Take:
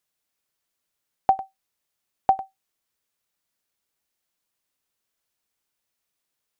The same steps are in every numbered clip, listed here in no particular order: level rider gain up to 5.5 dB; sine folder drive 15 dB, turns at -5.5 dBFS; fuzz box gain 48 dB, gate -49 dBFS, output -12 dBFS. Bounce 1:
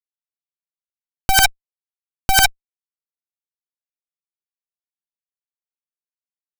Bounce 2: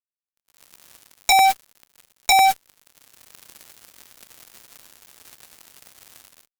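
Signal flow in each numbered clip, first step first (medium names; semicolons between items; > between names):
fuzz box > level rider > sine folder; level rider > sine folder > fuzz box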